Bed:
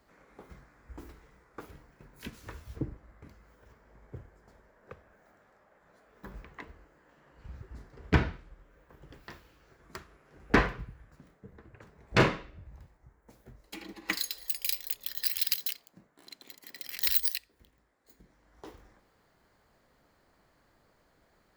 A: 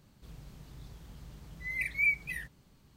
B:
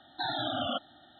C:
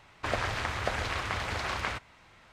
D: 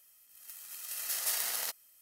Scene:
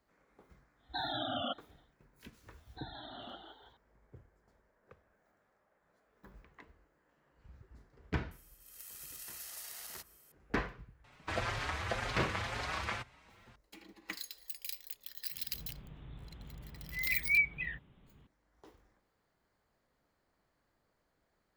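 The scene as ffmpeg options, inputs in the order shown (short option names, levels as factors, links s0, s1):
-filter_complex "[2:a]asplit=2[s0][s1];[0:a]volume=0.282[s2];[s0]agate=range=0.0224:threshold=0.00282:ratio=3:release=100:detection=peak[s3];[s1]asplit=6[s4][s5][s6][s7][s8][s9];[s5]adelay=165,afreqshift=84,volume=0.562[s10];[s6]adelay=330,afreqshift=168,volume=0.248[s11];[s7]adelay=495,afreqshift=252,volume=0.108[s12];[s8]adelay=660,afreqshift=336,volume=0.0479[s13];[s9]adelay=825,afreqshift=420,volume=0.0211[s14];[s4][s10][s11][s12][s13][s14]amix=inputs=6:normalize=0[s15];[4:a]acompressor=threshold=0.00794:ratio=6:attack=3.2:release=140:knee=1:detection=peak[s16];[3:a]asplit=2[s17][s18];[s18]adelay=5.2,afreqshift=2[s19];[s17][s19]amix=inputs=2:normalize=1[s20];[1:a]aresample=8000,aresample=44100[s21];[s3]atrim=end=1.19,asetpts=PTS-STARTPTS,volume=0.596,afade=t=in:d=0.1,afade=t=out:st=1.09:d=0.1,adelay=750[s22];[s15]atrim=end=1.19,asetpts=PTS-STARTPTS,volume=0.141,afade=t=in:d=0.004:c=hsin,afade=t=out:st=1.186:d=0.004:c=hsin,adelay=2580[s23];[s16]atrim=end=2.01,asetpts=PTS-STARTPTS,volume=0.841,afade=t=in:d=0.004:c=hsin,afade=t=out:st=2.006:d=0.004:c=hsin,adelay=8310[s24];[s20]atrim=end=2.52,asetpts=PTS-STARTPTS,volume=0.794,afade=t=in:d=0.004:c=hsin,afade=t=out:st=2.516:d=0.004:c=hsin,adelay=11040[s25];[s21]atrim=end=2.96,asetpts=PTS-STARTPTS,volume=0.944,afade=t=in:d=0.004:c=hsin,afade=t=out:st=2.956:d=0.004:c=hsin,adelay=15310[s26];[s2][s22][s23][s24][s25][s26]amix=inputs=6:normalize=0"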